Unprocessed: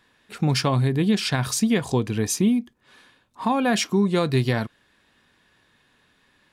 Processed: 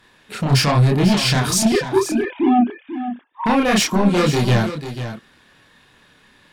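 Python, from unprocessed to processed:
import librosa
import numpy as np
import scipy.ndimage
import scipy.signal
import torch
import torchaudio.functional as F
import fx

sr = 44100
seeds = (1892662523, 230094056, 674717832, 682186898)

y = fx.sine_speech(x, sr, at=(1.72, 3.46))
y = fx.fold_sine(y, sr, drive_db=8, ceiling_db=-9.0)
y = fx.chorus_voices(y, sr, voices=2, hz=0.93, base_ms=29, depth_ms=3.7, mix_pct=50)
y = y + 10.0 ** (-11.0 / 20.0) * np.pad(y, (int(492 * sr / 1000.0), 0))[:len(y)]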